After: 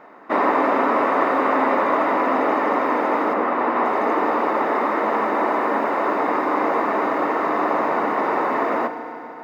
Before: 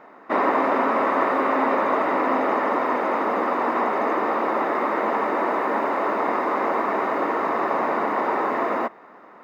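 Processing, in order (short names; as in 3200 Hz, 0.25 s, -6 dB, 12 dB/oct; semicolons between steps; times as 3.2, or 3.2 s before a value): 3.33–3.83 LPF 2600 Hz -> 4600 Hz 12 dB/oct; FDN reverb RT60 3.7 s, high-frequency decay 0.85×, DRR 8 dB; gain +1.5 dB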